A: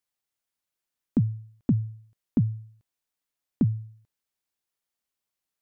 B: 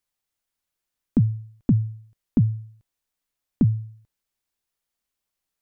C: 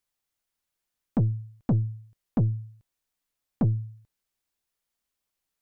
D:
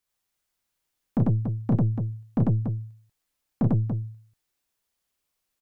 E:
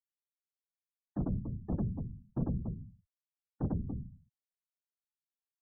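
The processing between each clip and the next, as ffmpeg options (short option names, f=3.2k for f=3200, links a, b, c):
-af "lowshelf=f=61:g=11,volume=2.5dB"
-af "aeval=exprs='(tanh(7.94*val(0)+0.25)-tanh(0.25))/7.94':c=same"
-af "aecho=1:1:32.07|96.21|285.7:0.631|1|0.447"
-af "afftfilt=real='hypot(re,im)*cos(2*PI*random(0))':imag='hypot(re,im)*sin(2*PI*random(1))':win_size=512:overlap=0.75,afftfilt=real='re*gte(hypot(re,im),0.00447)':imag='im*gte(hypot(re,im),0.00447)':win_size=1024:overlap=0.75,volume=-5dB"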